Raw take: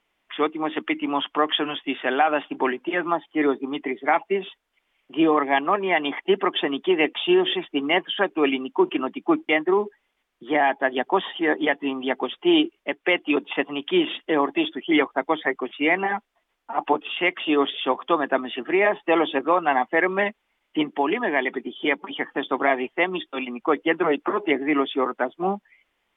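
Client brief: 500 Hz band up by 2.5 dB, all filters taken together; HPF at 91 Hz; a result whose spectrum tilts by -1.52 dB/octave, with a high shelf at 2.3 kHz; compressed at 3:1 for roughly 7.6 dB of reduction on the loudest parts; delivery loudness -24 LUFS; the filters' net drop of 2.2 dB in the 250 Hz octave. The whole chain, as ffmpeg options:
-af "highpass=91,equalizer=f=250:t=o:g=-6.5,equalizer=f=500:t=o:g=6,highshelf=f=2300:g=-6,acompressor=threshold=0.0631:ratio=3,volume=1.68"

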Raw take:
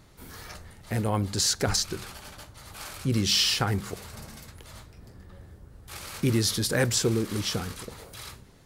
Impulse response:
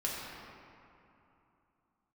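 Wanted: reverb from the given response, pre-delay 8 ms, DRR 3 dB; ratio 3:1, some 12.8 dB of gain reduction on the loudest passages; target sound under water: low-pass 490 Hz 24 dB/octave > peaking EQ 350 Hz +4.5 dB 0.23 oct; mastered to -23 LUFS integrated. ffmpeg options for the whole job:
-filter_complex "[0:a]acompressor=threshold=0.0126:ratio=3,asplit=2[s0][s1];[1:a]atrim=start_sample=2205,adelay=8[s2];[s1][s2]afir=irnorm=-1:irlink=0,volume=0.398[s3];[s0][s3]amix=inputs=2:normalize=0,lowpass=f=490:w=0.5412,lowpass=f=490:w=1.3066,equalizer=f=350:t=o:w=0.23:g=4.5,volume=7.94"

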